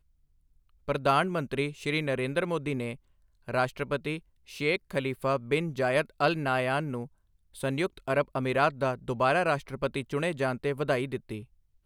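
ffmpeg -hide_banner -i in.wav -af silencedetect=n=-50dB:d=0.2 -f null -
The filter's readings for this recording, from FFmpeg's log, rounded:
silence_start: 0.00
silence_end: 0.88 | silence_duration: 0.88
silence_start: 2.97
silence_end: 3.48 | silence_duration: 0.51
silence_start: 4.20
silence_end: 4.47 | silence_duration: 0.28
silence_start: 7.07
silence_end: 7.54 | silence_duration: 0.47
silence_start: 11.45
silence_end: 11.85 | silence_duration: 0.40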